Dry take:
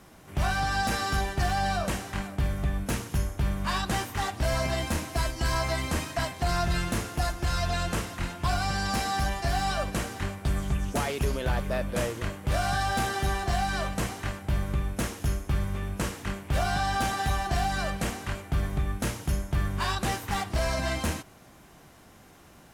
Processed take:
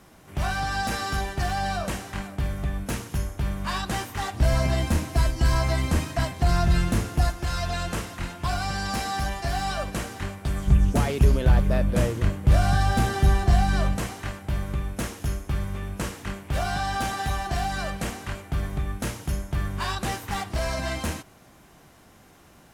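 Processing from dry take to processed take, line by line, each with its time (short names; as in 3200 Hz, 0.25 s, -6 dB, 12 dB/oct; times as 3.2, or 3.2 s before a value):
4.34–7.3 low shelf 300 Hz +8.5 dB
10.67–13.97 low shelf 300 Hz +11.5 dB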